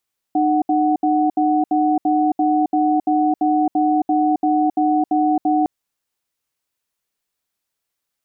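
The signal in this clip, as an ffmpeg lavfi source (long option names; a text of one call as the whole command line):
ffmpeg -f lavfi -i "aevalsrc='0.15*(sin(2*PI*305*t)+sin(2*PI*742*t))*clip(min(mod(t,0.34),0.27-mod(t,0.34))/0.005,0,1)':duration=5.31:sample_rate=44100" out.wav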